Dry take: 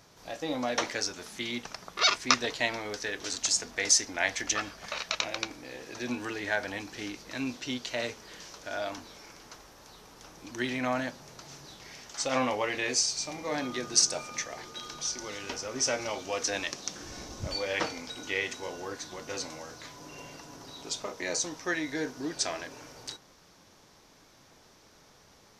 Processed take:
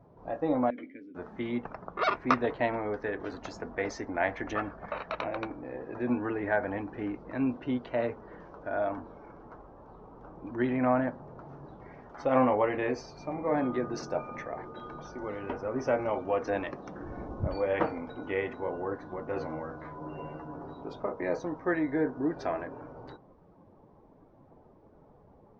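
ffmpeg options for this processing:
-filter_complex "[0:a]asettb=1/sr,asplit=3[s0][s1][s2];[s0]atrim=end=0.704[s3];[s1]atrim=start=0.7:end=1.15,asetpts=PTS-STARTPTS,afade=t=in:d=0.004:c=qsin,afade=t=out:st=0.446:d=0.004:c=qsin,asplit=3[s4][s5][s6];[s4]bandpass=f=270:t=q:w=8,volume=1[s7];[s5]bandpass=f=2290:t=q:w=8,volume=0.501[s8];[s6]bandpass=f=3010:t=q:w=8,volume=0.355[s9];[s7][s8][s9]amix=inputs=3:normalize=0[s10];[s2]atrim=start=1.146[s11];[s3][s10]acrossfade=d=0.004:c1=hsin:c2=qsin[s12];[s12][s11]acrossfade=d=0.004:c1=qsin:c2=hsin,asettb=1/sr,asplit=3[s13][s14][s15];[s13]atrim=end=19.354[s16];[s14]atrim=start=19.35:end=20.74,asetpts=PTS-STARTPTS,afade=t=in:d=0.004:c=qsin,afade=t=out:st=1.386:d=0.004:c=qsin,asplit=2[s17][s18];[s18]adelay=13,volume=0.708[s19];[s17][s19]amix=inputs=2:normalize=0,atrim=end_sample=61299[s20];[s15]atrim=start=20.736[s21];[s16][s20]acrossfade=d=0.004:c1=hsin:c2=qsin[s22];[s22][s21]acrossfade=d=0.004:c1=qsin:c2=hsin,lowpass=1100,afftdn=nr=13:nf=-59,volume=1.88"

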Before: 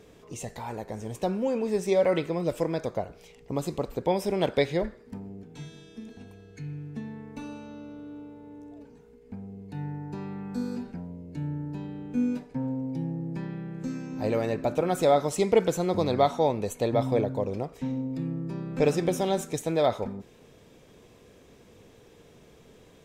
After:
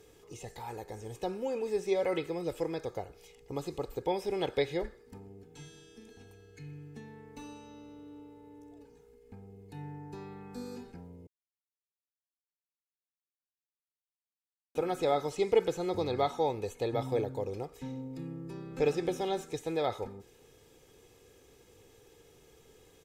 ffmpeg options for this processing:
-filter_complex "[0:a]asplit=3[s0][s1][s2];[s0]atrim=end=11.27,asetpts=PTS-STARTPTS,afade=t=out:st=11.266:d=0.004:c=hsin[s3];[s1]atrim=start=11.27:end=14.75,asetpts=PTS-STARTPTS,volume=0[s4];[s2]atrim=start=14.75,asetpts=PTS-STARTPTS,afade=t=in:d=0.004:c=hsin[s5];[s3][s4][s5]concat=n=3:v=0:a=1,acrossover=split=4700[s6][s7];[s7]acompressor=threshold=0.00158:ratio=4:attack=1:release=60[s8];[s6][s8]amix=inputs=2:normalize=0,aemphasis=mode=production:type=cd,aecho=1:1:2.4:0.52,volume=0.447"

